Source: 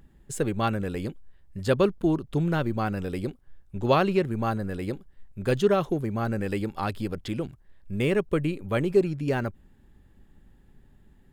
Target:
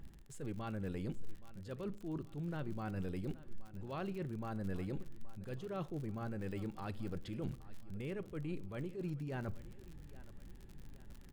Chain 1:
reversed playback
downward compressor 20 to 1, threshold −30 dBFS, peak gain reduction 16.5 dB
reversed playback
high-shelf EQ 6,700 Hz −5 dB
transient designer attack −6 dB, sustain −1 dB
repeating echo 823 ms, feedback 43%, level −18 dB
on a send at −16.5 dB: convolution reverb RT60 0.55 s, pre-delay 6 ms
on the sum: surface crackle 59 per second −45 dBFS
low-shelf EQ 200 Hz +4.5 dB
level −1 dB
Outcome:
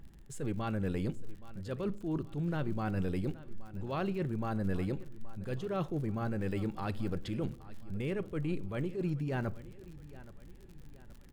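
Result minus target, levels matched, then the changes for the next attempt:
downward compressor: peak gain reduction −7 dB
change: downward compressor 20 to 1, threshold −37.5 dBFS, peak gain reduction 23.5 dB

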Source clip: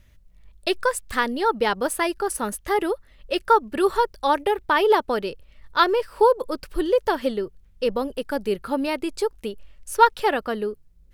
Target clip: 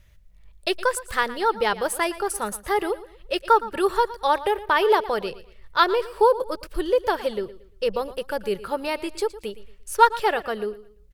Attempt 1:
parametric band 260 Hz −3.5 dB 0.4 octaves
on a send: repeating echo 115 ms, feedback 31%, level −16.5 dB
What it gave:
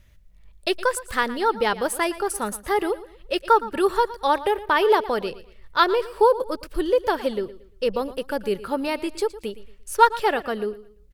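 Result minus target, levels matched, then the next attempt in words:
250 Hz band +3.0 dB
parametric band 260 Hz −13.5 dB 0.4 octaves
on a send: repeating echo 115 ms, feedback 31%, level −16.5 dB

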